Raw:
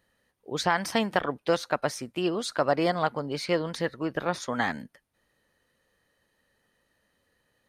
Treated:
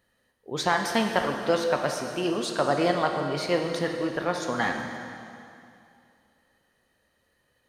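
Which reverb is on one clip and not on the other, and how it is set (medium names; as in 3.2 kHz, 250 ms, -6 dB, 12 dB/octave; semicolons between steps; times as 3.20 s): plate-style reverb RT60 2.6 s, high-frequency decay 0.95×, DRR 3 dB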